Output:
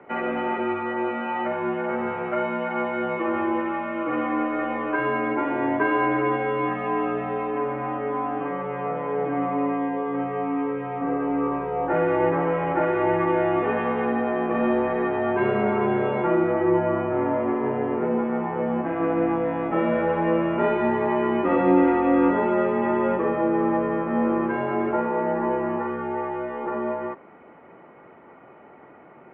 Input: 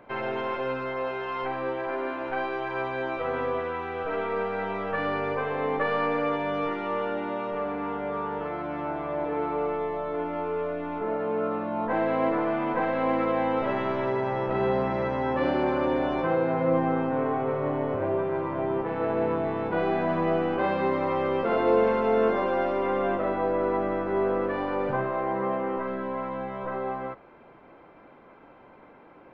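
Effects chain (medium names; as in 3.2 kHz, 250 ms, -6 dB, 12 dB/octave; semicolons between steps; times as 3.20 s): mistuned SSB -160 Hz 380–3000 Hz; trim +5 dB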